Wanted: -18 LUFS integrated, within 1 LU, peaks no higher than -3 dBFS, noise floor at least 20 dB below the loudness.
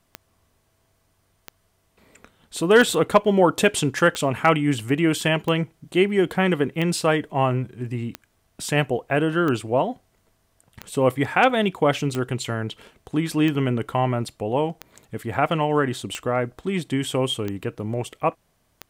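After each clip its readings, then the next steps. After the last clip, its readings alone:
clicks 15; loudness -22.5 LUFS; peak -4.0 dBFS; loudness target -18.0 LUFS
-> de-click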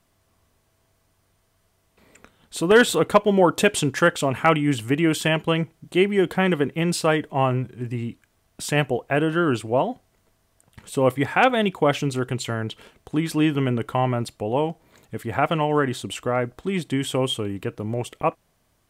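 clicks 0; loudness -22.5 LUFS; peak -4.0 dBFS; loudness target -18.0 LUFS
-> gain +4.5 dB; limiter -3 dBFS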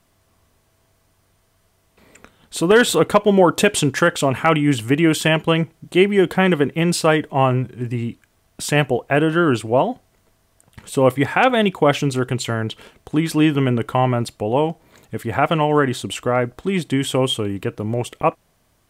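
loudness -18.5 LUFS; peak -3.0 dBFS; noise floor -62 dBFS

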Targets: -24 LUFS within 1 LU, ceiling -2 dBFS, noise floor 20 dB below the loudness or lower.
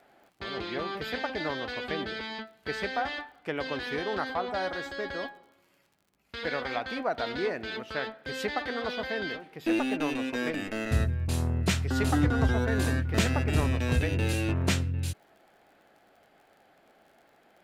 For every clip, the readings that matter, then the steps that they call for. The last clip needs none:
ticks 46/s; loudness -30.5 LUFS; peak -11.5 dBFS; loudness target -24.0 LUFS
-> de-click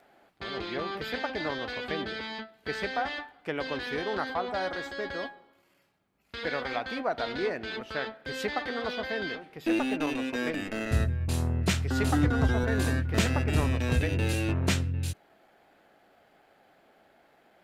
ticks 0.17/s; loudness -30.5 LUFS; peak -11.5 dBFS; loudness target -24.0 LUFS
-> gain +6.5 dB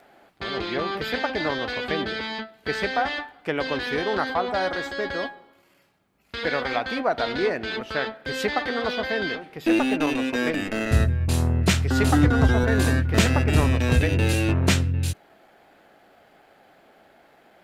loudness -24.0 LUFS; peak -5.0 dBFS; noise floor -58 dBFS

